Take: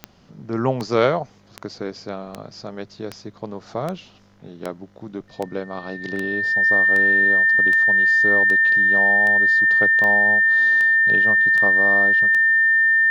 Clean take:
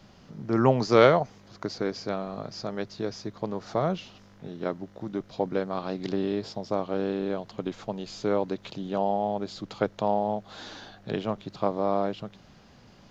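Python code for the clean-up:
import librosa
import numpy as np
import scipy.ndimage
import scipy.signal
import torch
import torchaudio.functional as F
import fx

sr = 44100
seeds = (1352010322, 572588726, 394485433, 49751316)

y = fx.fix_declick_ar(x, sr, threshold=10.0)
y = fx.notch(y, sr, hz=1800.0, q=30.0)
y = fx.fix_interpolate(y, sr, at_s=(6.16,), length_ms=1.4)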